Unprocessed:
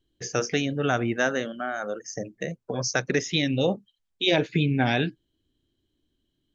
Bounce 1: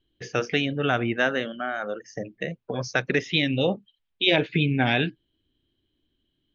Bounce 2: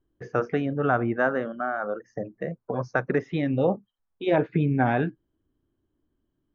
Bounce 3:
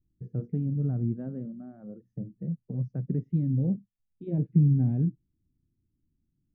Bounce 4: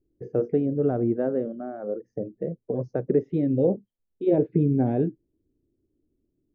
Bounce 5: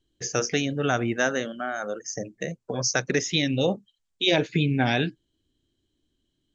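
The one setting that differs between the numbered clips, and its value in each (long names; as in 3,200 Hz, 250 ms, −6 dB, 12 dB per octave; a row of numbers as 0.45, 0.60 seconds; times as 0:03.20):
low-pass with resonance, frequency: 3,100, 1,200, 170, 440, 7,900 Hertz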